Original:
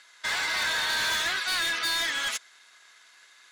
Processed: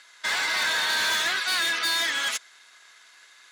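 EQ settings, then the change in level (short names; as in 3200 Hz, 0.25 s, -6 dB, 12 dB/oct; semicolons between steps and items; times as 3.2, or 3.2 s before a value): HPF 160 Hz 12 dB/oct; +2.5 dB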